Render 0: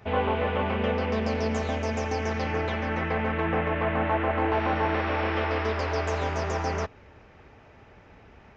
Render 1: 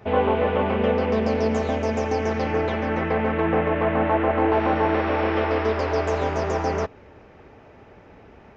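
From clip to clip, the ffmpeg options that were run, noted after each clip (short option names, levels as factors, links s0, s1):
-af "equalizer=f=390:w=0.48:g=7"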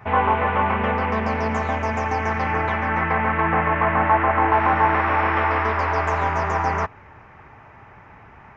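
-af "equalizer=f=125:t=o:w=1:g=6,equalizer=f=250:t=o:w=1:g=-4,equalizer=f=500:t=o:w=1:g=-8,equalizer=f=1000:t=o:w=1:g=10,equalizer=f=2000:t=o:w=1:g=7,equalizer=f=4000:t=o:w=1:g=-7"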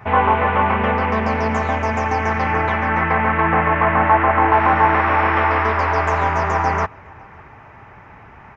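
-filter_complex "[0:a]asplit=2[s0][s1];[s1]adelay=553.9,volume=0.0447,highshelf=f=4000:g=-12.5[s2];[s0][s2]amix=inputs=2:normalize=0,volume=1.5"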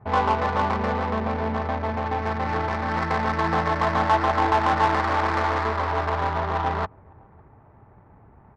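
-af "adynamicsmooth=sensitivity=0.5:basefreq=700,volume=0.531"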